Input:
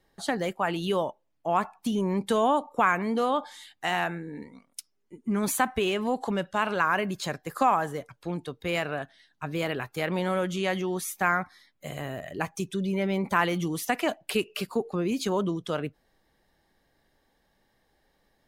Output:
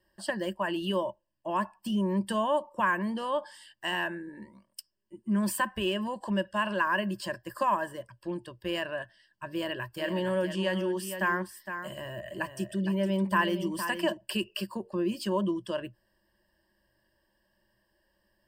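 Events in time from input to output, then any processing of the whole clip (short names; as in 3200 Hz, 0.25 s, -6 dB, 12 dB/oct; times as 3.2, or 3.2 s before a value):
9.51–14.17 echo 0.462 s -9 dB
whole clip: ripple EQ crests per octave 1.3, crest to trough 16 dB; gain -6.5 dB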